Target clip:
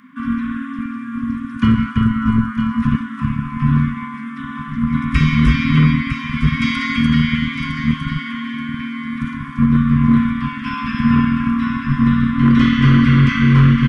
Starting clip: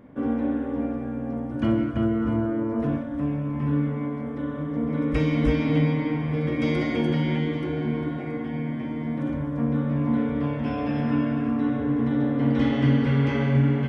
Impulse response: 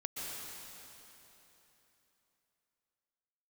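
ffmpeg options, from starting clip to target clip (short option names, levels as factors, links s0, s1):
-filter_complex "[0:a]aecho=1:1:957:0.376,acrossover=split=250|2200[s0][s1][s2];[s0]acrusher=bits=3:mix=0:aa=0.5[s3];[s3][s1][s2]amix=inputs=3:normalize=0,afftfilt=real='re*(1-between(b*sr/4096,270,1000))':imag='im*(1-between(b*sr/4096,270,1000))':win_size=4096:overlap=0.75,apsyclip=7.94,volume=0.531"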